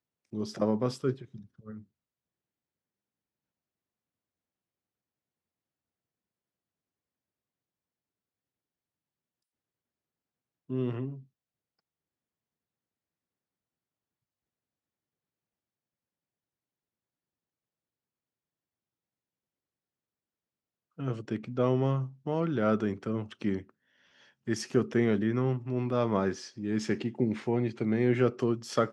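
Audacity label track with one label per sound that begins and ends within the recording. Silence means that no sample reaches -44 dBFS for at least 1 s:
10.700000	11.200000	sound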